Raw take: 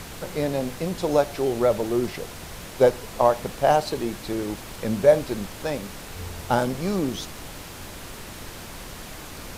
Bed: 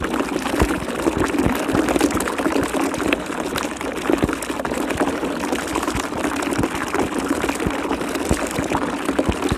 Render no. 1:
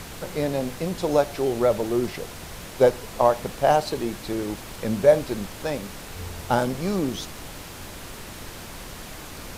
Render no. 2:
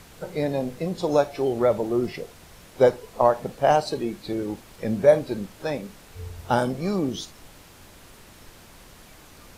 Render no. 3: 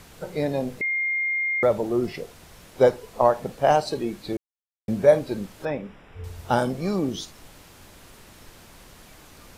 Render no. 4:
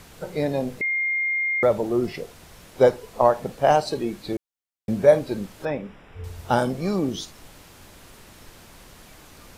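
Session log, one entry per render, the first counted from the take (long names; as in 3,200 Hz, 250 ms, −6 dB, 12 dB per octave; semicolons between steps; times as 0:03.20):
no processing that can be heard
noise reduction from a noise print 10 dB
0:00.81–0:01.63: beep over 2,120 Hz −22 dBFS; 0:04.37–0:04.88: silence; 0:05.65–0:06.24: Savitzky-Golay smoothing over 25 samples
level +1 dB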